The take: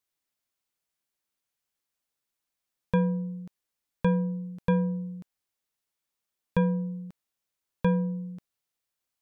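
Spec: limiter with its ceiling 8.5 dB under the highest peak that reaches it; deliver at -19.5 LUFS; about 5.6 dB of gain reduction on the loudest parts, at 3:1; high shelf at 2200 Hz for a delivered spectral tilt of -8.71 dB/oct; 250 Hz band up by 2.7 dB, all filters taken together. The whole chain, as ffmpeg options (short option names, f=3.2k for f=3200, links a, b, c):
-af "equalizer=f=250:t=o:g=5,highshelf=f=2.2k:g=5.5,acompressor=threshold=-24dB:ratio=3,volume=13dB,alimiter=limit=-9dB:level=0:latency=1"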